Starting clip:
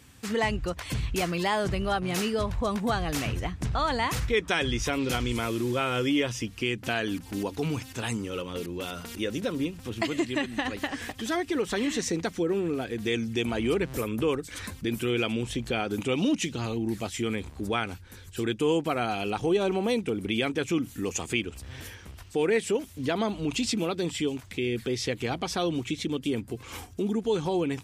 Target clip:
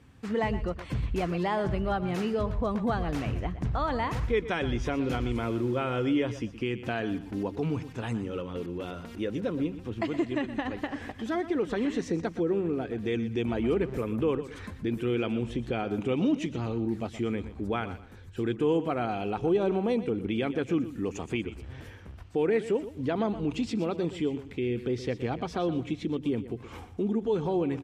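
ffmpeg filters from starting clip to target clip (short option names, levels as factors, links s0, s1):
-filter_complex "[0:a]lowpass=f=1100:p=1,asplit=2[s0][s1];[s1]aecho=0:1:121|242|363:0.211|0.0571|0.0154[s2];[s0][s2]amix=inputs=2:normalize=0"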